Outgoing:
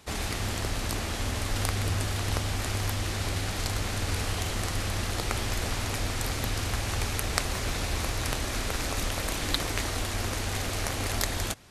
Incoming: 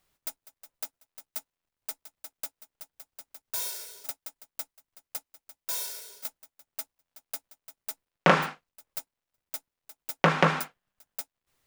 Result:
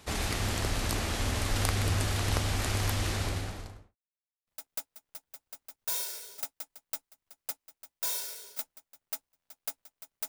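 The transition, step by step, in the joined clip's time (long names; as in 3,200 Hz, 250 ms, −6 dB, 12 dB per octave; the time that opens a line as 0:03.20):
outgoing
0:03.06–0:03.96: fade out and dull
0:03.96–0:04.47: silence
0:04.47: continue with incoming from 0:02.13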